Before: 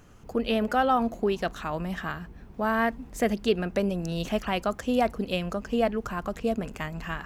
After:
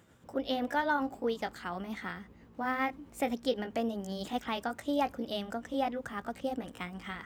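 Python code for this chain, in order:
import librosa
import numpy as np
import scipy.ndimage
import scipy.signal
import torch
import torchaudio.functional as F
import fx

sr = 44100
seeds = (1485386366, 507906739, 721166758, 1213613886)

y = fx.pitch_heads(x, sr, semitones=2.5)
y = scipy.signal.sosfilt(scipy.signal.butter(2, 95.0, 'highpass', fs=sr, output='sos'), y)
y = F.gain(torch.from_numpy(y), -5.5).numpy()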